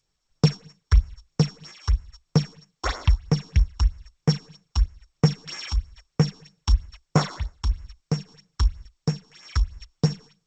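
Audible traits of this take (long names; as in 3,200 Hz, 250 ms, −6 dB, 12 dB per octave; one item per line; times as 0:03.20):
a buzz of ramps at a fixed pitch in blocks of 8 samples
phaser sweep stages 6, 3.1 Hz, lowest notch 130–4,100 Hz
sample-and-hold tremolo
G.722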